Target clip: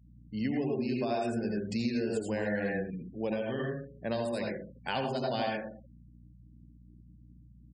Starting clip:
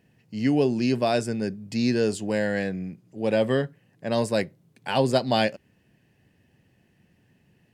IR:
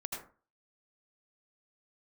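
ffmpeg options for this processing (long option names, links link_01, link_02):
-filter_complex "[1:a]atrim=start_sample=2205[link_01];[0:a][link_01]afir=irnorm=-1:irlink=0,aeval=exprs='val(0)+0.00224*(sin(2*PI*60*n/s)+sin(2*PI*2*60*n/s)/2+sin(2*PI*3*60*n/s)/3+sin(2*PI*4*60*n/s)/4+sin(2*PI*5*60*n/s)/5)':channel_layout=same,highpass=frequency=69:poles=1,acompressor=threshold=-28dB:ratio=10,aecho=1:1:67|134|201:0.168|0.0638|0.0242,asettb=1/sr,asplit=3[link_02][link_03][link_04];[link_02]atrim=end=2.904[link_05];[link_03]atrim=start=2.9:end=5.22,asetpts=PTS-STARTPTS,afade=type=in:duration=0.004:curve=qsin,afade=type=out:start_time=2.316:duration=0.004:curve=qsin,adynamicequalizer=threshold=0.00447:dfrequency=660:dqfactor=0.82:tfrequency=660:tqfactor=0.82:attack=5:release=100:ratio=0.375:range=3:mode=cutabove:tftype=bell[link_06];[link_04]atrim=start=5.216[link_07];[link_05][link_06]acrossfade=duration=0.004:curve1=hsin:curve2=qsin[link_08];[link_08][link_07]acrossfade=duration=0.004:curve1=qsin:curve2=hsin,afftfilt=real='re*gte(hypot(re,im),0.00562)':imag='im*gte(hypot(re,im),0.00562)':win_size=1024:overlap=0.75"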